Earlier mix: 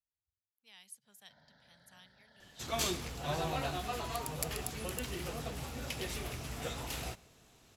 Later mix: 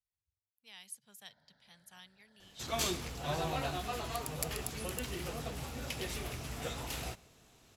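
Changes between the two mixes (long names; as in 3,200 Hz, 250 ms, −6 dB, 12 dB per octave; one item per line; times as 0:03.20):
speech +4.5 dB
first sound −6.5 dB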